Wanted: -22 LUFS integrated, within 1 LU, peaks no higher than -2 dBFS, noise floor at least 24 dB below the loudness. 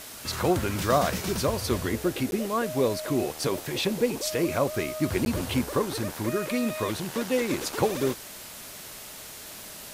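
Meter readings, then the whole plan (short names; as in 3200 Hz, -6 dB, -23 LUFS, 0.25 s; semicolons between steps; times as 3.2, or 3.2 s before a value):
dropouts 2; longest dropout 11 ms; noise floor -42 dBFS; noise floor target -52 dBFS; loudness -27.5 LUFS; peak -10.0 dBFS; loudness target -22.0 LUFS
-> interpolate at 2.31/5.25, 11 ms; noise print and reduce 10 dB; gain +5.5 dB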